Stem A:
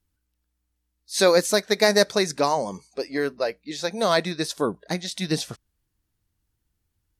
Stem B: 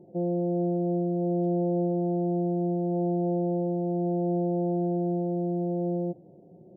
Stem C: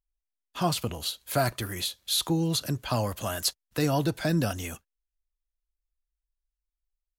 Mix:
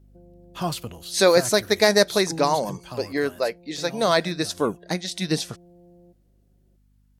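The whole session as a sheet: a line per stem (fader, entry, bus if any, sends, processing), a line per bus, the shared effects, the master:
+1.0 dB, 0.00 s, no send, dry
-19.5 dB, 0.00 s, no send, compressor, threshold -29 dBFS, peak gain reduction 6.5 dB
2.77 s -0.5 dB -> 3.45 s -8.5 dB, 0.00 s, no send, hum 50 Hz, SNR 22 dB; auto duck -7 dB, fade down 0.40 s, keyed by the first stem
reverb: off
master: dry

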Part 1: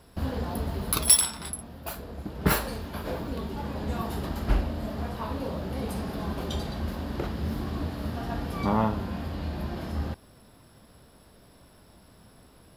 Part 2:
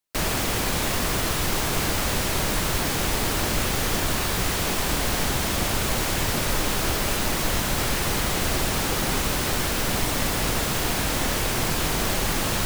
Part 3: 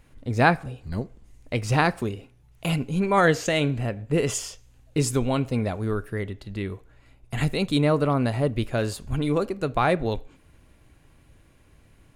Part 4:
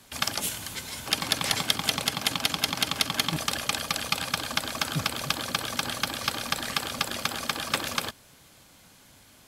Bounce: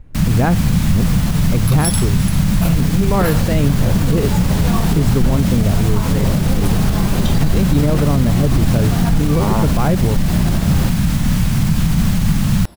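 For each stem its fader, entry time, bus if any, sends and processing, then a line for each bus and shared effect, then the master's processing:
-2.5 dB, 0.75 s, no send, AGC gain up to 13.5 dB
-1.5 dB, 0.00 s, no send, resonant low shelf 270 Hz +14 dB, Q 3
+2.0 dB, 0.00 s, no send, tilt -3.5 dB/oct
off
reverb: off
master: limiter -5.5 dBFS, peak gain reduction 8 dB

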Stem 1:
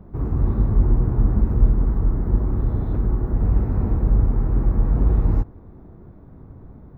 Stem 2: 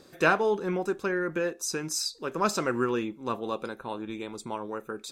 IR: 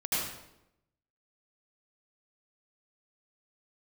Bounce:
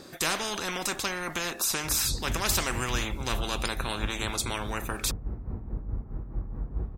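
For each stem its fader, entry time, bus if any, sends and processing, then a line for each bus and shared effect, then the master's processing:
-14.0 dB, 1.70 s, send -17 dB, tremolo 4.7 Hz, depth 75%
-3.5 dB, 0.00 s, no send, gate -45 dBFS, range -14 dB; bell 470 Hz -5 dB 0.3 oct; spectral compressor 4:1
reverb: on, RT60 0.85 s, pre-delay 71 ms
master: dry

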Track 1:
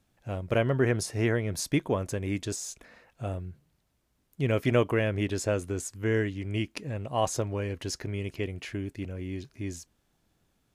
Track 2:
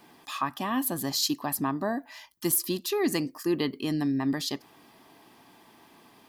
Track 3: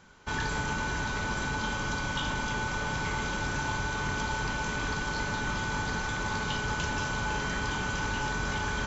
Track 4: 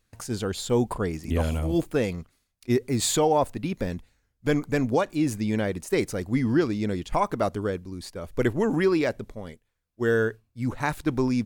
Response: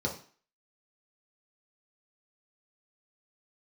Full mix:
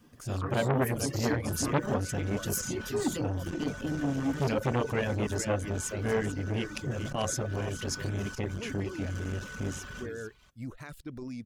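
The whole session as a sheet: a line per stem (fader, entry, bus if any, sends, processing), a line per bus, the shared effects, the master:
+2.0 dB, 0.00 s, no bus, send -14.5 dB, echo send -11.5 dB, dry
-7.0 dB, 0.00 s, no bus, send -6 dB, no echo send, dry
-1.0 dB, 1.20 s, bus A, send -11.5 dB, echo send -16.5 dB, soft clip -36.5 dBFS, distortion -8 dB; high shelf 8700 Hz +4 dB
-9.0 dB, 0.00 s, bus A, no send, no echo send, vibrato 6.4 Hz 54 cents
bus A: 0.0 dB, limiter -29.5 dBFS, peak gain reduction 9.5 dB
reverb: on, RT60 0.45 s, pre-delay 3 ms
echo: echo 0.441 s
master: reverb removal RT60 0.57 s; bell 850 Hz -11.5 dB 0.37 oct; core saturation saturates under 1100 Hz

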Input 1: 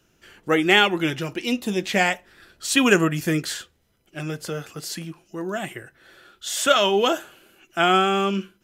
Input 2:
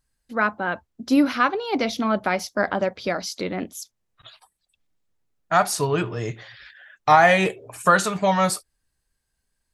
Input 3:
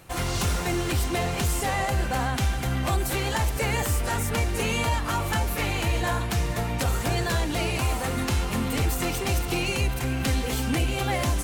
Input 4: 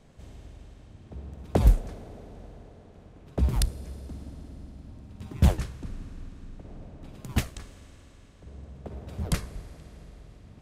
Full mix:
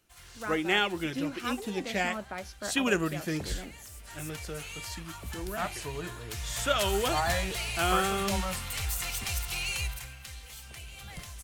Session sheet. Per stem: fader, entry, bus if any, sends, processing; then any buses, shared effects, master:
-10.0 dB, 0.00 s, no send, dry
-16.0 dB, 0.05 s, no send, dry
3.89 s -17.5 dB -> 4.23 s -10 dB -> 6.16 s -10 dB -> 6.58 s -0.5 dB -> 9.86 s -0.5 dB -> 10.24 s -12 dB, 0.00 s, no send, passive tone stack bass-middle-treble 10-0-10
-18.0 dB, 1.85 s, no send, dry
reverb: off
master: dry

